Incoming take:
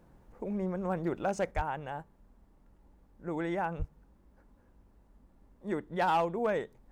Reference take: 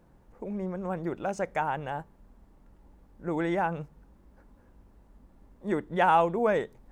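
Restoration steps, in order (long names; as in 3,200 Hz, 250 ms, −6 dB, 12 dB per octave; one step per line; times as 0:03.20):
clipped peaks rebuilt −22 dBFS
0:01.51: level correction +5 dB
0:01.55–0:01.67: high-pass filter 140 Hz 24 dB per octave
0:03.78–0:03.90: high-pass filter 140 Hz 24 dB per octave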